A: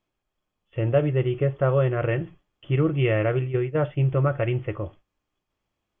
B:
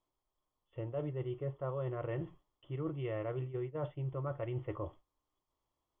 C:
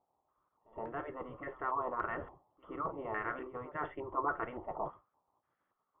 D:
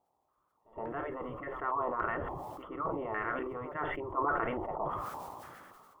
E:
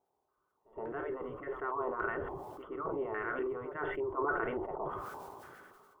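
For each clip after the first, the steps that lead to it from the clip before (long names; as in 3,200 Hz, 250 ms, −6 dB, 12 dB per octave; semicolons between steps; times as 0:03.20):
thirty-one-band graphic EQ 100 Hz −5 dB, 200 Hz −11 dB, 1,000 Hz +8 dB, 1,600 Hz −10 dB, 2,500 Hz −11 dB; reversed playback; downward compressor 6 to 1, threshold −29 dBFS, peak gain reduction 13.5 dB; reversed playback; level −6 dB
echo ahead of the sound 118 ms −23.5 dB; gate on every frequency bin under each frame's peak −10 dB weak; low-pass on a step sequencer 3.5 Hz 810–1,800 Hz; level +6.5 dB
level that may fall only so fast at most 25 dB per second; level +1.5 dB
hollow resonant body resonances 400/1,500 Hz, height 11 dB, ringing for 45 ms; level −4.5 dB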